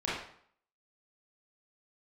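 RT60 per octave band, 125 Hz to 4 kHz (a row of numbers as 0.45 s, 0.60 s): 0.60 s, 0.60 s, 0.60 s, 0.60 s, 0.55 s, 0.50 s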